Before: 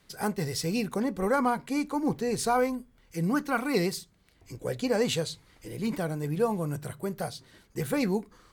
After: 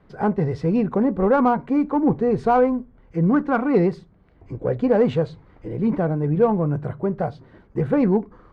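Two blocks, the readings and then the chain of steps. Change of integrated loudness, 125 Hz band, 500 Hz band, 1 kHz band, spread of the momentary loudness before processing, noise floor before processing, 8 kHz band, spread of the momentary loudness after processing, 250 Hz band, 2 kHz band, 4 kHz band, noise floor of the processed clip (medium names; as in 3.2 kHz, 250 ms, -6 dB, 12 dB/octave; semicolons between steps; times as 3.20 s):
+8.5 dB, +10.0 dB, +9.0 dB, +7.5 dB, 12 LU, -63 dBFS, under -20 dB, 11 LU, +9.5 dB, +1.5 dB, under -10 dB, -54 dBFS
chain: low-pass 1.1 kHz 12 dB/octave; in parallel at -8 dB: saturation -27.5 dBFS, distortion -11 dB; on the sum: trim +7.5 dB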